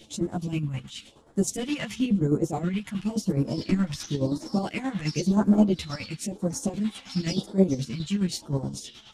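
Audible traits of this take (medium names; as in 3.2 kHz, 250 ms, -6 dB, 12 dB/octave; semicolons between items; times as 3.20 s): phasing stages 2, 0.96 Hz, lowest notch 380–2700 Hz; chopped level 9.5 Hz, depth 60%, duty 45%; a shimmering, thickened sound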